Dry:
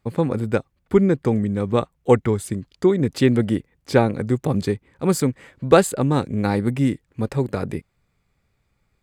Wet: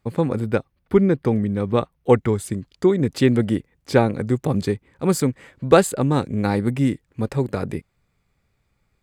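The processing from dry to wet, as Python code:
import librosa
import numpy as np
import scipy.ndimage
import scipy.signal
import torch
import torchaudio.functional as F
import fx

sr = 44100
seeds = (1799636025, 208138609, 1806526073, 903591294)

y = fx.peak_eq(x, sr, hz=7300.0, db=-11.0, octaves=0.33, at=(0.44, 2.16))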